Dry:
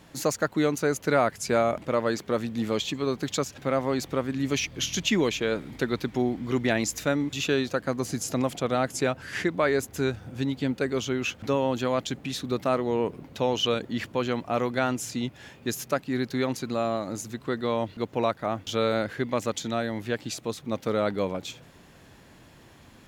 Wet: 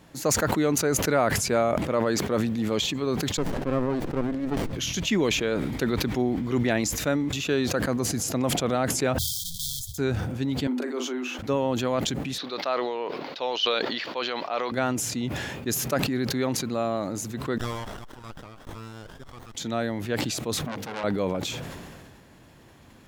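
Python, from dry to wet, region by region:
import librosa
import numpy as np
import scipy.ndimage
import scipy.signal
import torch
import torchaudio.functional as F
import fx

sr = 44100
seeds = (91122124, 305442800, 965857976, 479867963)

y = fx.chain(x, sr, fx.highpass(hz=210.0, slope=12),
    fx.high_shelf(hz=3400.0, db=-11.5),
    fx.running_max(window=33), at=(3.37, 4.73))
y = fx.chain(y, sr, fx.halfwave_hold(),
    fx.brickwall_bandstop(low_hz=170.0, high_hz=3100.0),
    fx.tone_stack(knobs='10-0-10'), at=(9.18, 9.98))
y = fx.chain(y, sr, fx.auto_swell(attack_ms=133.0),
    fx.cheby_ripple_highpass(hz=240.0, ripple_db=6),
    fx.doubler(ms=40.0, db=-7.5), at=(10.67, 11.39))
y = fx.chain(y, sr, fx.highpass(hz=580.0, slope=12),
    fx.high_shelf_res(hz=6300.0, db=-13.0, q=3.0), at=(12.38, 14.72))
y = fx.chain(y, sr, fx.ladder_highpass(hz=1200.0, resonance_pct=20),
    fx.small_body(hz=(3300.0,), ring_ms=45, db=10),
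    fx.running_max(window=17), at=(17.58, 19.55))
y = fx.chain(y, sr, fx.highpass(hz=64.0, slope=24),
    fx.hum_notches(base_hz=50, count=9),
    fx.transformer_sat(knee_hz=3300.0), at=(20.63, 21.04))
y = fx.peak_eq(y, sr, hz=3900.0, db=-2.5, octaves=3.0)
y = fx.sustainer(y, sr, db_per_s=28.0)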